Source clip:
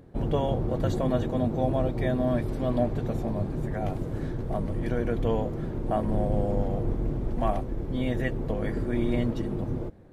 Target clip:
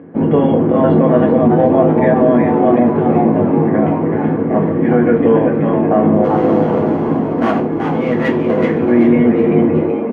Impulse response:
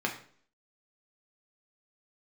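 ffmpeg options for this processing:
-filter_complex "[0:a]lowpass=frequency=2300:width=0.5412,lowpass=frequency=2300:width=1.3066,asplit=3[link_01][link_02][link_03];[link_01]afade=type=out:start_time=6.23:duration=0.02[link_04];[link_02]asoftclip=type=hard:threshold=-25dB,afade=type=in:start_time=6.23:duration=0.02,afade=type=out:start_time=8.77:duration=0.02[link_05];[link_03]afade=type=in:start_time=8.77:duration=0.02[link_06];[link_04][link_05][link_06]amix=inputs=3:normalize=0,highpass=80,asplit=6[link_07][link_08][link_09][link_10][link_11][link_12];[link_08]adelay=379,afreqshift=110,volume=-6dB[link_13];[link_09]adelay=758,afreqshift=220,volume=-13.1dB[link_14];[link_10]adelay=1137,afreqshift=330,volume=-20.3dB[link_15];[link_11]adelay=1516,afreqshift=440,volume=-27.4dB[link_16];[link_12]adelay=1895,afreqshift=550,volume=-34.5dB[link_17];[link_07][link_13][link_14][link_15][link_16][link_17]amix=inputs=6:normalize=0[link_18];[1:a]atrim=start_sample=2205,asetrate=57330,aresample=44100[link_19];[link_18][link_19]afir=irnorm=-1:irlink=0,alimiter=level_in=11dB:limit=-1dB:release=50:level=0:latency=1,volume=-1dB"

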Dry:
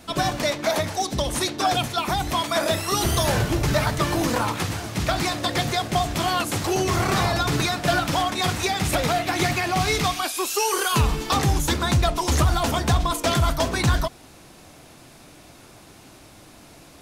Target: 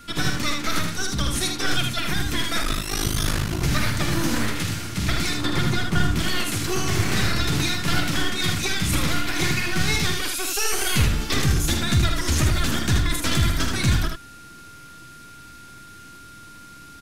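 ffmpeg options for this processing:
ffmpeg -i in.wav -filter_complex "[0:a]asettb=1/sr,asplit=3[link_01][link_02][link_03];[link_01]atrim=end=5.374[link_04];[link_02]atrim=start=5.37:end=6.19,asetpts=PTS-STARTPTS,afade=type=in:duration=0.004:curve=qsin,afade=type=out:start_time=0.816:duration=0.004:curve=qsin,tiltshelf=frequency=1300:gain=4.5[link_05];[link_03]atrim=start=6.186[link_06];[link_04][link_05]acrossfade=duration=0.004:curve1=hsin:curve2=qsin[link_07];[link_07][link_06]acrossfade=duration=0.004:curve1=qsin:curve2=hsin,acrossover=split=380|1500|1900[link_08][link_09][link_10][link_11];[link_09]aeval=exprs='abs(val(0))':channel_layout=same[link_12];[link_08][link_12][link_10][link_11]amix=inputs=4:normalize=0,aeval=exprs='val(0)+0.00501*sin(2*PI*1400*n/s)':channel_layout=same,aecho=1:1:47|78:0.316|0.562,asettb=1/sr,asplit=3[link_13][link_14][link_15];[link_13]atrim=end=2.624[link_16];[link_14]atrim=start=2.62:end=3.62,asetpts=PTS-STARTPTS,afade=type=in:duration=0.004:curve=qsin,afade=type=out:start_time=0.996:duration=0.004:curve=qsin,aeval=exprs='val(0)*sin(2*PI*26*n/s)':channel_layout=same[link_17];[link_15]atrim=start=3.616[link_18];[link_16][link_17]acrossfade=duration=0.004:curve1=hsin:curve2=qsin[link_19];[link_19][link_18]acrossfade=duration=0.004:curve1=qsin:curve2=hsin" out.wav

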